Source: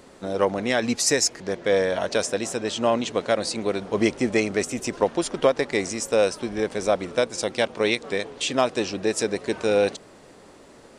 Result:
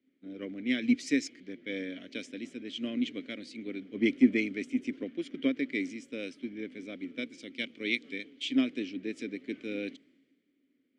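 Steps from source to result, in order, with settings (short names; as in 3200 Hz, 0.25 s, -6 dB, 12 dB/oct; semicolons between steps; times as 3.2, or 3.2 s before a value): vowel filter i; three-band expander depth 70%; gain +2.5 dB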